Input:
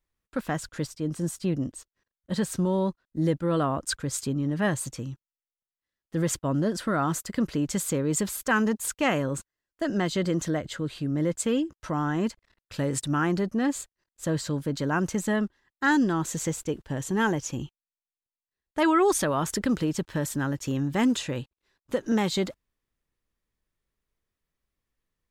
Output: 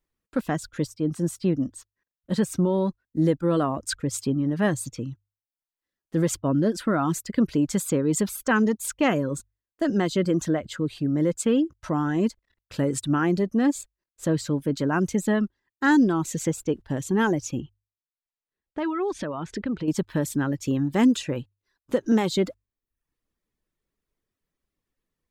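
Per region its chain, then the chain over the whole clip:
0:17.60–0:19.88: low-pass filter 3,600 Hz + downward compressor 2 to 1, threshold −34 dBFS
whole clip: reverb reduction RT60 0.6 s; parametric band 300 Hz +5.5 dB 2 octaves; mains-hum notches 50/100 Hz

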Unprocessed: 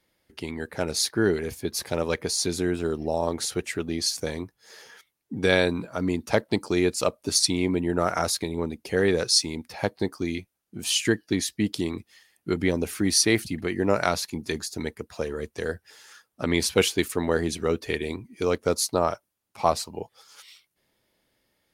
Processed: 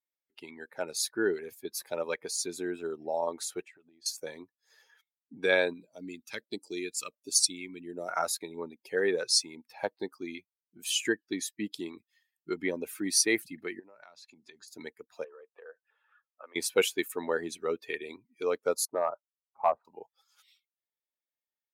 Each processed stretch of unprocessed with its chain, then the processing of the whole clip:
0:03.64–0:04.06: low-pass filter 3,400 Hz 6 dB per octave + downward compressor 12 to 1, threshold −39 dBFS
0:05.73–0:08.09: bass and treble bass −4 dB, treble +1 dB + all-pass phaser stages 2, 1.4 Hz, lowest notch 630–1,300 Hz
0:13.79–0:14.68: low-pass filter 7,200 Hz + downward compressor 20 to 1, threshold −35 dBFS
0:15.24–0:16.56: downward compressor 4 to 1, threshold −33 dBFS + loudspeaker in its box 490–2,700 Hz, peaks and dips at 510 Hz +7 dB, 1,200 Hz +5 dB, 2,000 Hz −6 dB
0:18.85–0:19.85: low-pass filter 1,300 Hz 24 dB per octave + hard clipping −15 dBFS
whole clip: spectral dynamics exaggerated over time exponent 1.5; high-pass filter 400 Hz 12 dB per octave; dynamic equaliser 3,900 Hz, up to −5 dB, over −43 dBFS, Q 1.4

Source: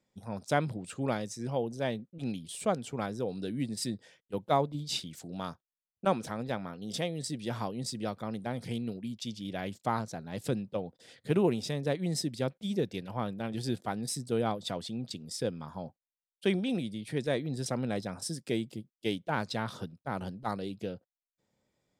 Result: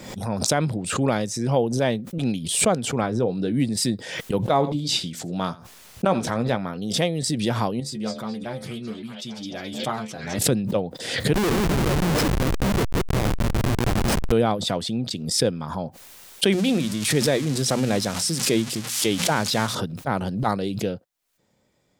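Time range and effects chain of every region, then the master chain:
0:03.01–0:03.54: low-pass filter 11,000 Hz + high-shelf EQ 3,900 Hz −11 dB + double-tracking delay 17 ms −11.5 dB
0:04.41–0:06.57: high-shelf EQ 11,000 Hz −7 dB + double-tracking delay 17 ms −10.5 dB + single-tap delay 84 ms −20 dB
0:07.80–0:10.39: stiff-string resonator 71 Hz, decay 0.21 s, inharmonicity 0.002 + echo through a band-pass that steps 213 ms, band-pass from 4,900 Hz, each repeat −0.7 octaves, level −2.5 dB
0:11.33–0:14.32: feedback delay that plays each chunk backwards 174 ms, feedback 59%, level −4 dB + high-pass filter 90 Hz 6 dB per octave + comparator with hysteresis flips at −29.5 dBFS
0:16.52–0:19.75: spike at every zero crossing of −27.5 dBFS + low-pass filter 7,500 Hz + mains-hum notches 60/120/180/240 Hz
whole clip: boost into a limiter +18 dB; background raised ahead of every attack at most 58 dB per second; level −7.5 dB

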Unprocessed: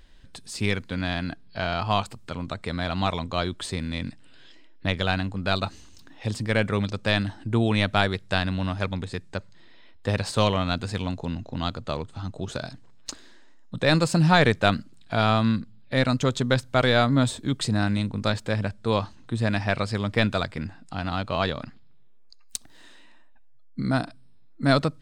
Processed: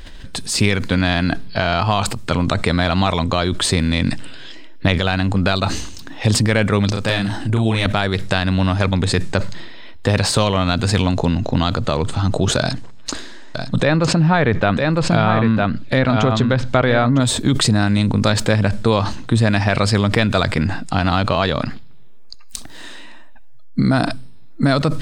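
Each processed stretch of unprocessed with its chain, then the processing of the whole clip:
0:06.90–0:07.86: high-shelf EQ 8,800 Hz +8 dB + downward compressor 2 to 1, threshold −39 dBFS + double-tracking delay 36 ms −3 dB
0:12.59–0:17.20: treble cut that deepens with the level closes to 2,300 Hz, closed at −17 dBFS + single-tap delay 955 ms −7.5 dB
whole clip: downward compressor, threshold −28 dBFS; boost into a limiter +19 dB; level that may fall only so fast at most 47 dB per second; level −3.5 dB

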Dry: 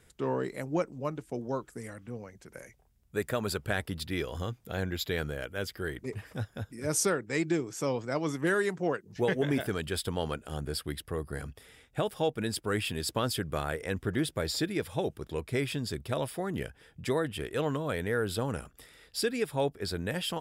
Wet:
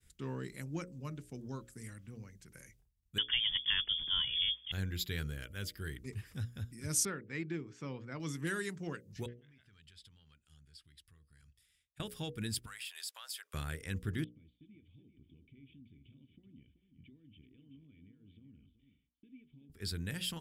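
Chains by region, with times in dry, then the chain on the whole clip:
0:03.18–0:04.72: mu-law and A-law mismatch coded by mu + low-shelf EQ 250 Hz +4.5 dB + voice inversion scrambler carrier 3,400 Hz
0:07.05–0:08.20: low-pass filter 2,400 Hz + low-shelf EQ 130 Hz −7 dB
0:09.26–0:12.00: treble cut that deepens with the level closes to 2,600 Hz, closed at −25.5 dBFS + downward compressor 2.5 to 1, threshold −44 dBFS + guitar amp tone stack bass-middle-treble 5-5-5
0:12.66–0:13.54: Butterworth high-pass 660 Hz + downward compressor 5 to 1, threshold −36 dBFS
0:14.24–0:19.70: downward compressor 8 to 1, threshold −40 dBFS + formant resonators in series i + single-tap delay 379 ms −9.5 dB
whole clip: downward expander −59 dBFS; guitar amp tone stack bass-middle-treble 6-0-2; mains-hum notches 60/120/180/240/300/360/420/480/540/600 Hz; level +12.5 dB

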